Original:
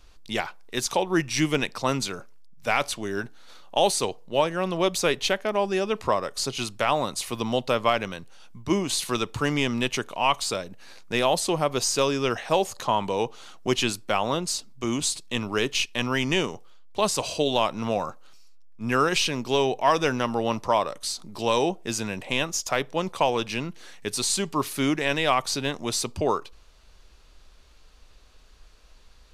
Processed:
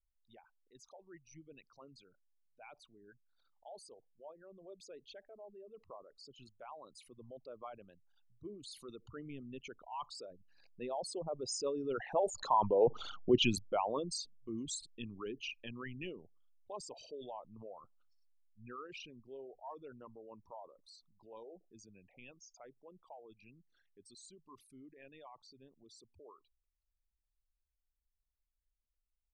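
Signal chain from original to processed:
spectral envelope exaggerated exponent 3
source passing by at 0:13.00, 10 m/s, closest 2.9 metres

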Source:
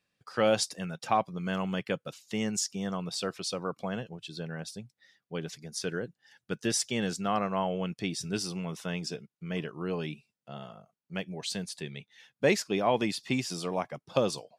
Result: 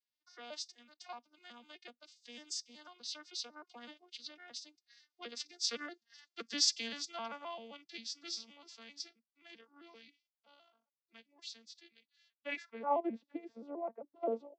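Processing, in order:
vocoder with an arpeggio as carrier major triad, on A#3, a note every 128 ms
source passing by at 0:05.82, 9 m/s, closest 7.9 metres
band-pass filter sweep 4,800 Hz → 530 Hz, 0:12.27–0:13.13
level +18 dB

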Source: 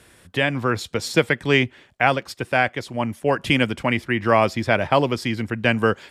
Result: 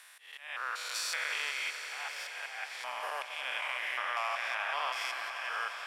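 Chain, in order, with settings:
spectrum averaged block by block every 200 ms
high-pass filter 870 Hz 24 dB per octave
downward compressor 4 to 1, threshold −32 dBFS, peak gain reduction 9.5 dB
volume swells 273 ms
echo that builds up and dies away 91 ms, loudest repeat 5, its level −14.5 dB
wrong playback speed 24 fps film run at 25 fps

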